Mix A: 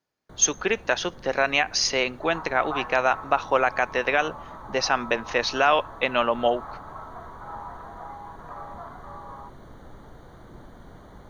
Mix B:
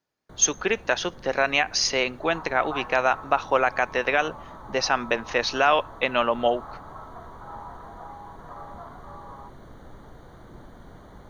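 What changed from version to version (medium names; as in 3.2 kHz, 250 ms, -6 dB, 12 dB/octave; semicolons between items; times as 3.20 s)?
second sound: add distance through air 480 m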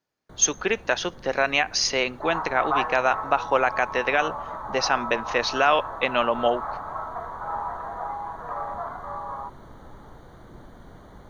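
second sound +10.0 dB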